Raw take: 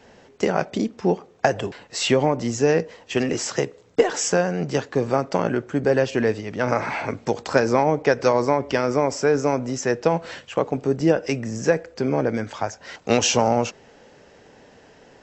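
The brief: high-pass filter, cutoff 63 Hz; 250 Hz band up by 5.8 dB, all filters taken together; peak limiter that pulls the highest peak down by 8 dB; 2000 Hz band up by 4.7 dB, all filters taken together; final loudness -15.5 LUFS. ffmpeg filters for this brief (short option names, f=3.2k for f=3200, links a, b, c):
-af "highpass=63,equalizer=f=250:t=o:g=7,equalizer=f=2k:t=o:g=6,volume=5.5dB,alimiter=limit=-2dB:level=0:latency=1"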